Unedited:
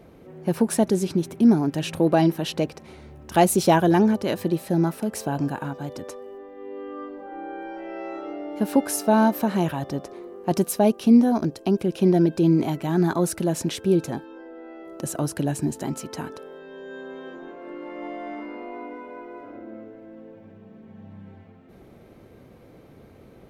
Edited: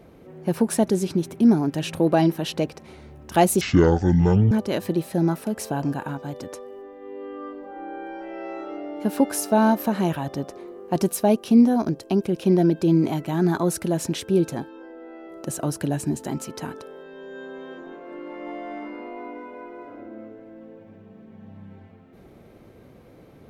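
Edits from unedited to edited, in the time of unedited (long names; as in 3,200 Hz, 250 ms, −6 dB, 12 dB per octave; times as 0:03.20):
0:03.61–0:04.07: play speed 51%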